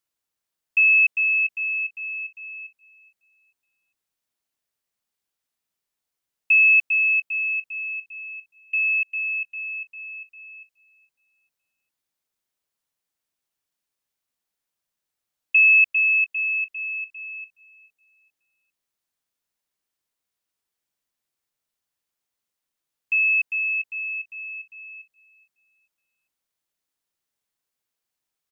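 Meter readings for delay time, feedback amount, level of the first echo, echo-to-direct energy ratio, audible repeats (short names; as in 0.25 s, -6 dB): 0.42 s, 43%, -22.5 dB, -21.5 dB, 2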